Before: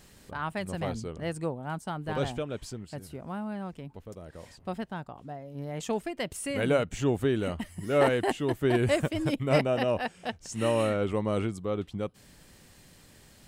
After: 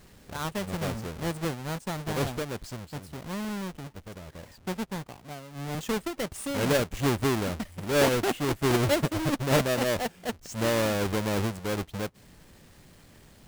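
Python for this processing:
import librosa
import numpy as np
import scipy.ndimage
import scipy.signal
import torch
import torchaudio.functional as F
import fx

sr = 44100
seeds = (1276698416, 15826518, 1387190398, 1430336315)

y = fx.halfwave_hold(x, sr)
y = fx.band_widen(y, sr, depth_pct=40, at=(5.08, 5.75))
y = F.gain(torch.from_numpy(y), -3.5).numpy()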